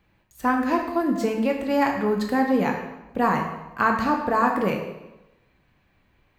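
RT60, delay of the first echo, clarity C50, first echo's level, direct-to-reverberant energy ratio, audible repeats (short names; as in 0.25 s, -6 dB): 1.0 s, none, 5.0 dB, none, 1.0 dB, none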